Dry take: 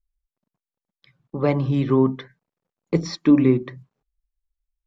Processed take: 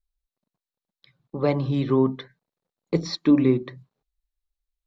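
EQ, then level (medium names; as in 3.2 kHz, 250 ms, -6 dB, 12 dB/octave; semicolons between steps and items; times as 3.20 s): peaking EQ 560 Hz +2.5 dB 1.5 oct; peaking EQ 4 kHz +8.5 dB 0.38 oct; -3.5 dB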